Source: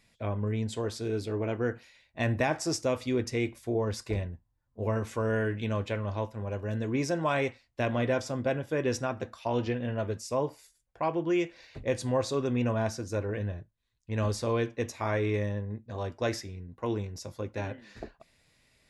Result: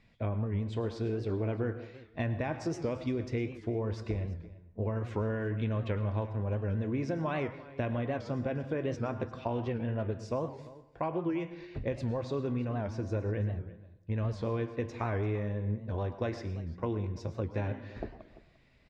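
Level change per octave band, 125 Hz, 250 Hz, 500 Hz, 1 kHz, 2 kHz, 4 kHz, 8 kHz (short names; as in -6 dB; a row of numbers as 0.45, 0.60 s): 0.0 dB, -2.5 dB, -4.5 dB, -5.0 dB, -7.0 dB, -10.5 dB, under -15 dB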